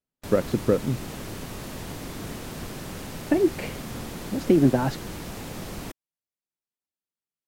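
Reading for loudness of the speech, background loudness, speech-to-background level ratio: −24.0 LKFS, −36.5 LKFS, 12.5 dB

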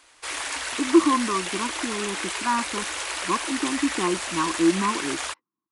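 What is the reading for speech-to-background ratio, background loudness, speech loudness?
3.5 dB, −29.0 LKFS, −25.5 LKFS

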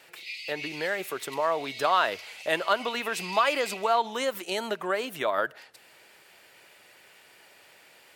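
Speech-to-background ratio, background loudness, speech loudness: 10.5 dB, −39.0 LKFS, −28.5 LKFS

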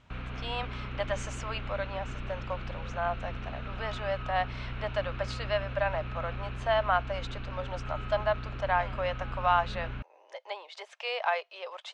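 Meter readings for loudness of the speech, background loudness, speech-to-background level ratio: −33.5 LKFS, −39.5 LKFS, 6.0 dB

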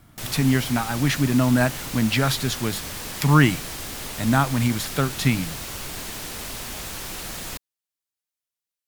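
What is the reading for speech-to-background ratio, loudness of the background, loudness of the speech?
10.0 dB, −32.0 LKFS, −22.0 LKFS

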